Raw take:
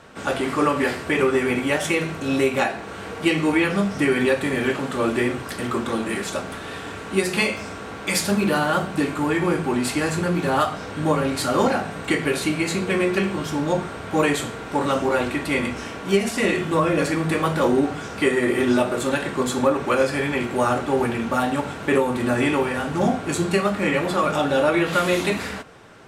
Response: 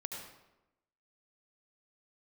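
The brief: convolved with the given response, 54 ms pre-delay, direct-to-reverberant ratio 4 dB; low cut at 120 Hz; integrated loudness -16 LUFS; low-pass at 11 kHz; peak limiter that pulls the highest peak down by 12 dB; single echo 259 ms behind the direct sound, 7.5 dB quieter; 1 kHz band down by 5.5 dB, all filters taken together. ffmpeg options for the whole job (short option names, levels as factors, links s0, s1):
-filter_complex "[0:a]highpass=120,lowpass=11000,equalizer=f=1000:t=o:g=-7.5,alimiter=limit=0.106:level=0:latency=1,aecho=1:1:259:0.422,asplit=2[s0][s1];[1:a]atrim=start_sample=2205,adelay=54[s2];[s1][s2]afir=irnorm=-1:irlink=0,volume=0.668[s3];[s0][s3]amix=inputs=2:normalize=0,volume=3.55"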